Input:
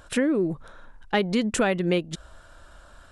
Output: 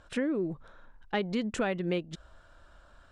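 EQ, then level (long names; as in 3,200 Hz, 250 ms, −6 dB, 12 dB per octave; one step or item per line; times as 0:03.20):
high-frequency loss of the air 70 metres
−7.0 dB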